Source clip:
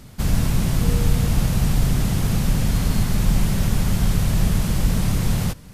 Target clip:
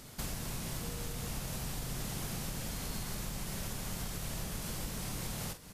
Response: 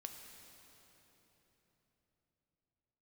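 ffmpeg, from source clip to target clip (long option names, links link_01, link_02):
-filter_complex "[0:a]bass=frequency=250:gain=-9,treble=frequency=4000:gain=4,acompressor=threshold=-32dB:ratio=6,asplit=2[link_01][link_02];[link_02]adelay=45,volume=-9dB[link_03];[link_01][link_03]amix=inputs=2:normalize=0,volume=-4dB"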